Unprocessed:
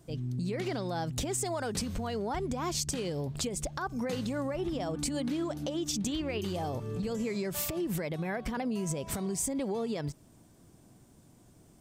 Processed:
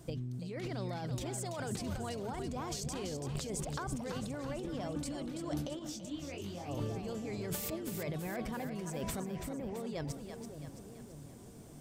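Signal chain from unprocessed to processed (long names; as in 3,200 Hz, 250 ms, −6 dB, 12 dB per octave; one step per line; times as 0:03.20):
0:09.20–0:09.80: low-pass filter 2,200 Hz 24 dB per octave
compressor whose output falls as the input rises −39 dBFS, ratio −1
on a send: echo with a time of its own for lows and highs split 530 Hz, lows 570 ms, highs 333 ms, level −7 dB
0:05.79–0:06.69: on the sum: micro pitch shift up and down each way 50 cents
level −1 dB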